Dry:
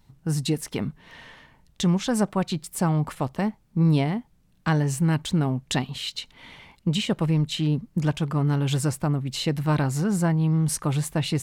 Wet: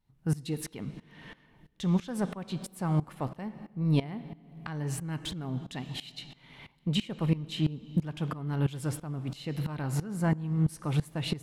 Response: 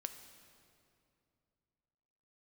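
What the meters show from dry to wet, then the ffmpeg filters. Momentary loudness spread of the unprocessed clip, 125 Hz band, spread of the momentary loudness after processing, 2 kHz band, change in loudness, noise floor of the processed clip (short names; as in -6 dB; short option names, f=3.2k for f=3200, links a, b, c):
8 LU, -7.0 dB, 14 LU, -9.0 dB, -7.5 dB, -64 dBFS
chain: -filter_complex "[0:a]equalizer=f=11k:w=2.3:g=7.5,asoftclip=type=tanh:threshold=-11dB,asplit=2[a][b];[b]highshelf=f=4.3k:g=9[c];[1:a]atrim=start_sample=2205,asetrate=52920,aresample=44100,lowpass=3.6k[d];[c][d]afir=irnorm=-1:irlink=0,volume=3.5dB[e];[a][e]amix=inputs=2:normalize=0,aeval=exprs='val(0)*pow(10,-19*if(lt(mod(-3*n/s,1),2*abs(-3)/1000),1-mod(-3*n/s,1)/(2*abs(-3)/1000),(mod(-3*n/s,1)-2*abs(-3)/1000)/(1-2*abs(-3)/1000))/20)':c=same,volume=-5.5dB"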